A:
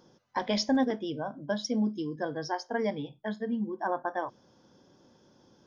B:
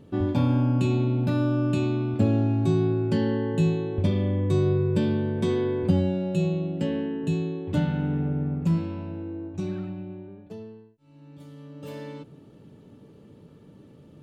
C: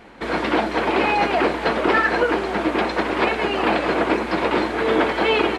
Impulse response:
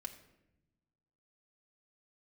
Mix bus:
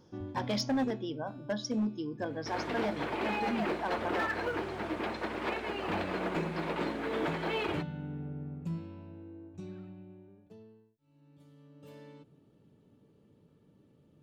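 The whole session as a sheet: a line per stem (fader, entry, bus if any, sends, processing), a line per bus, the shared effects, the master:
-4.5 dB, 0.00 s, send -11.5 dB, none
-13.5 dB, 0.00 s, no send, auto duck -12 dB, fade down 1.25 s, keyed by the first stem
-16.0 dB, 2.25 s, send -10 dB, companded quantiser 8-bit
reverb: on, RT60 0.90 s, pre-delay 3 ms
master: hard clipper -26 dBFS, distortion -18 dB

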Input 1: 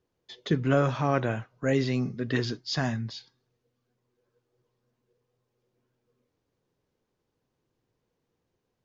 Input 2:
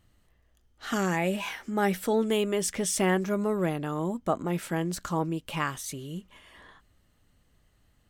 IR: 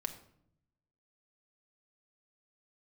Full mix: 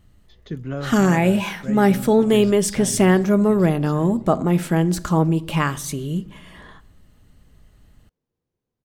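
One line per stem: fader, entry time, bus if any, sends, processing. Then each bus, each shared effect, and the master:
-12.0 dB, 0.00 s, no send, echo send -8 dB, none
0.0 dB, 0.00 s, send -4 dB, no echo send, none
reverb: on, RT60 0.70 s, pre-delay 5 ms
echo: feedback delay 1165 ms, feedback 24%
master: bass shelf 360 Hz +7.5 dB; level rider gain up to 3 dB

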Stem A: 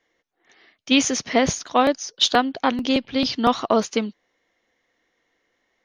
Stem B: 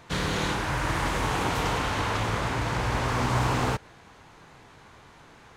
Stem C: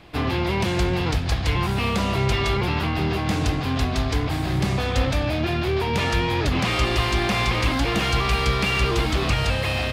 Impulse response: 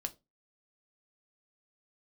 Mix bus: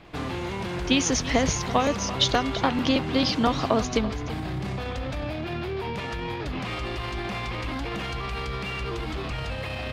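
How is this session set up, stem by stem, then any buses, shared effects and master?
+0.5 dB, 0.00 s, no send, echo send -14.5 dB, compression, threshold -19 dBFS, peak gain reduction 8 dB
-7.5 dB, 0.05 s, no send, no echo send, compression, threshold -30 dBFS, peak gain reduction 9.5 dB
-1.0 dB, 0.00 s, no send, no echo send, treble shelf 4.7 kHz -8.5 dB; peak limiter -22 dBFS, peak gain reduction 11.5 dB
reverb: none
echo: delay 335 ms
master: peaking EQ 85 Hz -8.5 dB 0.21 oct

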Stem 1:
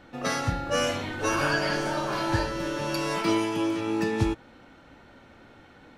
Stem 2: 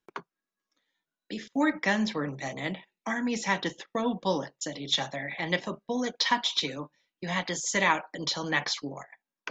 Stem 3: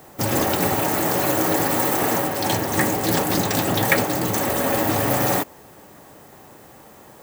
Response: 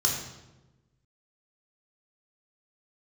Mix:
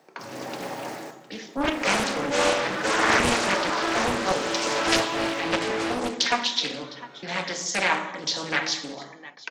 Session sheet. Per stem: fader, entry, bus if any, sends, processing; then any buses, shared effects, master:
+0.5 dB, 1.60 s, send -4 dB, no echo send, Bessel high-pass 410 Hz, order 6; treble shelf 7.6 kHz -10 dB
+2.0 dB, 0.00 s, send -13 dB, echo send -17.5 dB, none
-10.0 dB, 0.00 s, muted 1.11–1.66 s, send -19.5 dB, echo send -19.5 dB, auto duck -12 dB, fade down 0.40 s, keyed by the second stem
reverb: on, RT60 1.1 s, pre-delay 3 ms
echo: delay 708 ms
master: high-pass 110 Hz 12 dB/octave; three-band isolator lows -23 dB, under 180 Hz, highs -15 dB, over 7.5 kHz; loudspeaker Doppler distortion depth 0.88 ms

